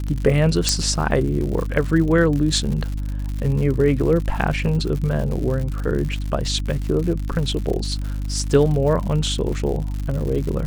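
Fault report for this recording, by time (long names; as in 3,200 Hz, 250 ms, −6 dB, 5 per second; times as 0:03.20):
surface crackle 120 per second −27 dBFS
mains hum 50 Hz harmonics 6 −25 dBFS
0:00.69: click −4 dBFS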